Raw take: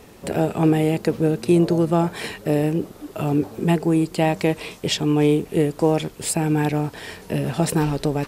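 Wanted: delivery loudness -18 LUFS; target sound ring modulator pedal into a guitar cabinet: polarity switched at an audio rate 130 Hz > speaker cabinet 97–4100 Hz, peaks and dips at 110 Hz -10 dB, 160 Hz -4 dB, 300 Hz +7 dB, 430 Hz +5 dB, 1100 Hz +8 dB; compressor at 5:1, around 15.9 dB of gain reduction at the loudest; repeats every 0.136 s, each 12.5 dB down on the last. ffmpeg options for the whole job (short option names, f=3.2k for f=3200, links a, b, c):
-af "acompressor=threshold=-31dB:ratio=5,aecho=1:1:136|272|408:0.237|0.0569|0.0137,aeval=exprs='val(0)*sgn(sin(2*PI*130*n/s))':c=same,highpass=97,equalizer=f=110:t=q:w=4:g=-10,equalizer=f=160:t=q:w=4:g=-4,equalizer=f=300:t=q:w=4:g=7,equalizer=f=430:t=q:w=4:g=5,equalizer=f=1.1k:t=q:w=4:g=8,lowpass=f=4.1k:w=0.5412,lowpass=f=4.1k:w=1.3066,volume=13.5dB"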